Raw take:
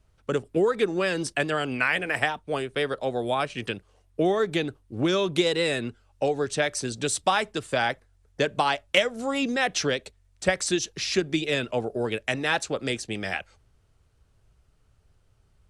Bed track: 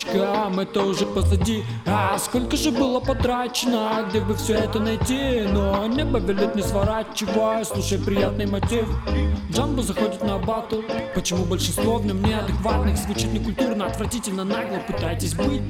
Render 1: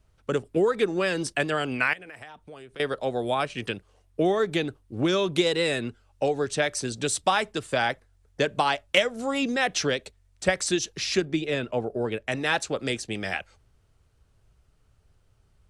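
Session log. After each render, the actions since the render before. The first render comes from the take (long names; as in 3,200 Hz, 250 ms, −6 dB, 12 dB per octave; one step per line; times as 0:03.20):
0:01.93–0:02.80: downward compressor 4 to 1, threshold −43 dBFS
0:11.25–0:12.32: high-shelf EQ 2,700 Hz −9 dB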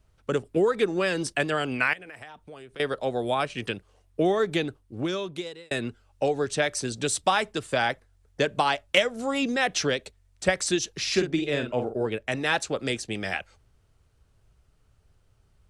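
0:04.59–0:05.71: fade out
0:11.02–0:12.06: double-tracking delay 48 ms −7.5 dB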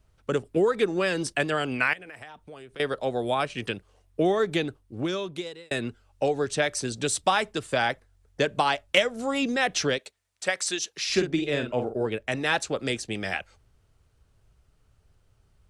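0:09.98–0:11.10: high-pass filter 840 Hz 6 dB per octave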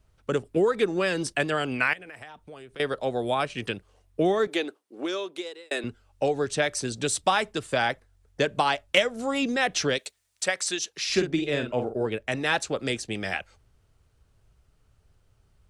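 0:04.47–0:05.84: high-pass filter 300 Hz 24 dB per octave
0:09.95–0:10.46: high-shelf EQ 3,100 Hz +9.5 dB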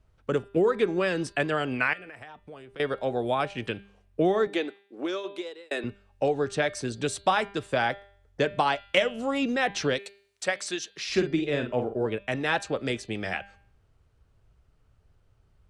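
high-shelf EQ 4,600 Hz −10.5 dB
hum removal 199.6 Hz, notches 24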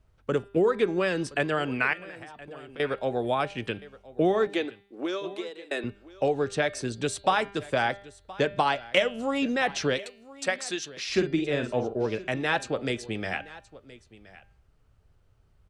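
single-tap delay 1,021 ms −19.5 dB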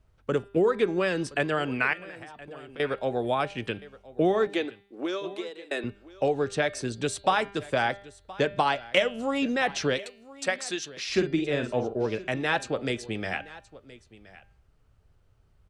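no processing that can be heard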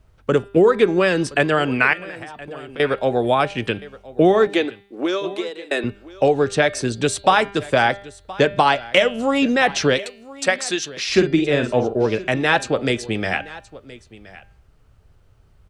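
level +9 dB
brickwall limiter −2 dBFS, peak gain reduction 2.5 dB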